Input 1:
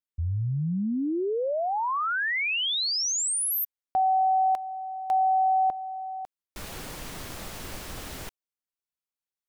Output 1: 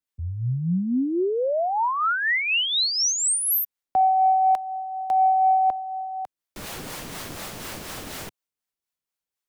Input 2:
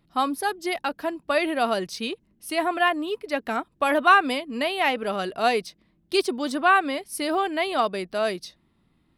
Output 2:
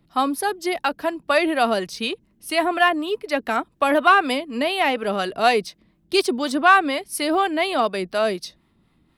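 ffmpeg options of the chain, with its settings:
-filter_complex "[0:a]acrossover=split=100[a][b];[a]acompressor=threshold=-51dB:ratio=6[c];[c][b]amix=inputs=2:normalize=0,acrossover=split=570[d][e];[d]aeval=exprs='val(0)*(1-0.5/2+0.5/2*cos(2*PI*4.1*n/s))':c=same[f];[e]aeval=exprs='val(0)*(1-0.5/2-0.5/2*cos(2*PI*4.1*n/s))':c=same[g];[f][g]amix=inputs=2:normalize=0,acontrast=61"

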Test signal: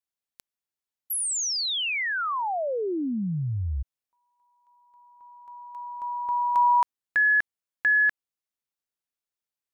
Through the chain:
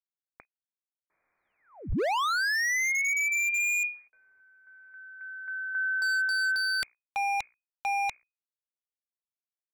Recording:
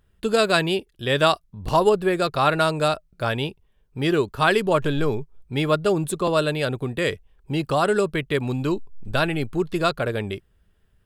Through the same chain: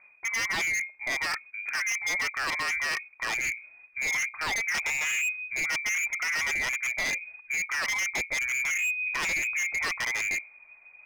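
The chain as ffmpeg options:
-af "bandreject=f=60:t=h:w=6,bandreject=f=120:t=h:w=6,bandreject=f=180:t=h:w=6,bandreject=f=240:t=h:w=6,bandreject=f=300:t=h:w=6,bandreject=f=360:t=h:w=6,acrusher=bits=11:mix=0:aa=0.000001,lowpass=f=2.1k:t=q:w=0.5098,lowpass=f=2.1k:t=q:w=0.6013,lowpass=f=2.1k:t=q:w=0.9,lowpass=f=2.1k:t=q:w=2.563,afreqshift=-2500,asubboost=boost=2.5:cutoff=99,areverse,acompressor=threshold=-30dB:ratio=6:attack=3.7:release=453:knee=1:detection=peak,areverse,aeval=exprs='0.0251*(abs(mod(val(0)/0.0251+3,4)-2)-1)':c=same,volume=8.5dB"

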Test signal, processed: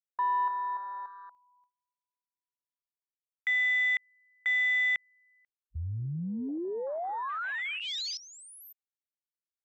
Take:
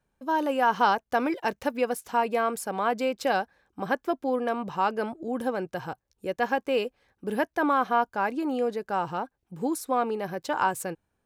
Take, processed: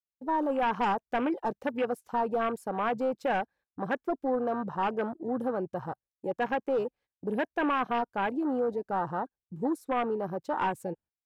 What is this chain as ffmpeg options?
-af "agate=range=-20dB:threshold=-53dB:ratio=16:detection=peak,aeval=exprs='0.316*(cos(1*acos(clip(val(0)/0.316,-1,1)))-cos(1*PI/2))+0.0794*(cos(3*acos(clip(val(0)/0.316,-1,1)))-cos(3*PI/2))+0.126*(cos(5*acos(clip(val(0)/0.316,-1,1)))-cos(5*PI/2))+0.00355*(cos(8*acos(clip(val(0)/0.316,-1,1)))-cos(8*PI/2))':c=same,afwtdn=0.0447,volume=-7dB"

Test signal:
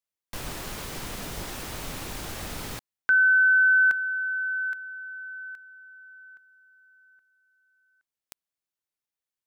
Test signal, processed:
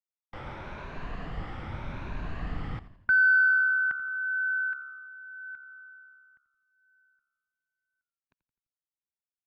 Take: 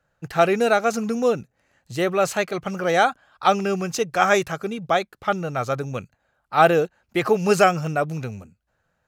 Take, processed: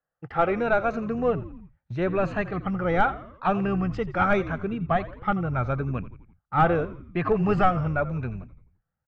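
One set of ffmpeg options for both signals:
-filter_complex "[0:a]afftfilt=real='re*pow(10,8/40*sin(2*PI*(1.5*log(max(b,1)*sr/1024/100)/log(2)-(0.81)*(pts-256)/sr)))':imag='im*pow(10,8/40*sin(2*PI*(1.5*log(max(b,1)*sr/1024/100)/log(2)-(0.81)*(pts-256)/sr)))':win_size=1024:overlap=0.75,asplit=2[a][b];[b]highpass=f=720:p=1,volume=14dB,asoftclip=type=tanh:threshold=-0.5dB[c];[a][c]amix=inputs=2:normalize=0,lowpass=f=1.2k:p=1,volume=-6dB,agate=range=-14dB:threshold=-46dB:ratio=3:release=35:detection=peak,lowpass=2.4k,asplit=5[d][e][f][g][h];[e]adelay=85,afreqshift=-69,volume=-16dB[i];[f]adelay=170,afreqshift=-138,volume=-22.2dB[j];[g]adelay=255,afreqshift=-207,volume=-28.4dB[k];[h]adelay=340,afreqshift=-276,volume=-34.6dB[l];[d][i][j][k][l]amix=inputs=5:normalize=0,asubboost=boost=10.5:cutoff=170,volume=-6.5dB"

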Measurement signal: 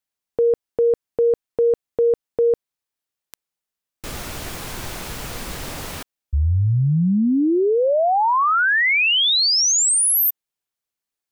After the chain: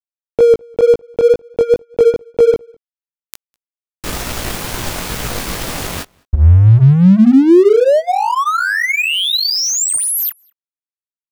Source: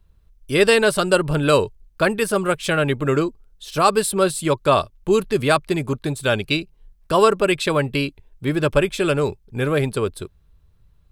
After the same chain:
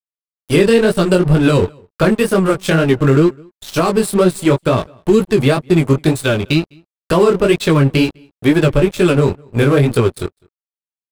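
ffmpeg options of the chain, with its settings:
-filter_complex "[0:a]acrossover=split=390[a][b];[b]acompressor=threshold=-25dB:ratio=8:attack=6.4:release=625:knee=2.83:detection=peak[c];[a][c]amix=inputs=2:normalize=0,flanger=delay=16.5:depth=5.9:speed=2.1,aeval=exprs='sgn(val(0))*max(abs(val(0))-0.00891,0)':c=same,asplit=2[d][e];[e]adelay=204.1,volume=-30dB,highshelf=f=4k:g=-4.59[f];[d][f]amix=inputs=2:normalize=0,alimiter=level_in=16dB:limit=-1dB:release=50:level=0:latency=1,volume=-1dB"

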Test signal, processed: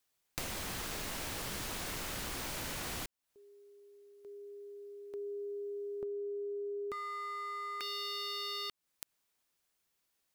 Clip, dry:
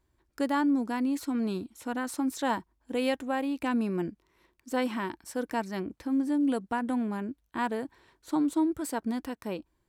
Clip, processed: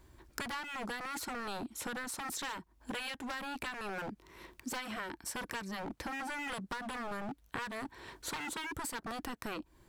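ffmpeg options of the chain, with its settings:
-filter_complex "[0:a]acrossover=split=1100[a][b];[a]aeval=exprs='0.015*(abs(mod(val(0)/0.015+3,4)-2)-1)':c=same[c];[c][b]amix=inputs=2:normalize=0,acompressor=threshold=-51dB:ratio=8,volume=13dB"

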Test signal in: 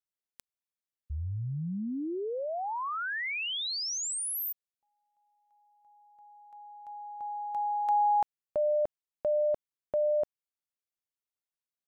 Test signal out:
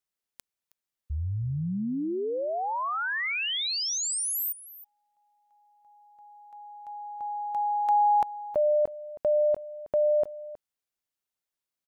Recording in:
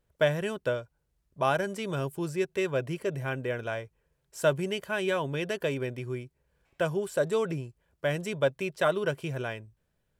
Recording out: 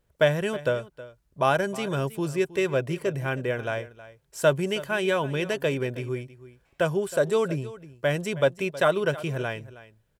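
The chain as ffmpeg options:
-af "aecho=1:1:318:0.141,volume=4dB"

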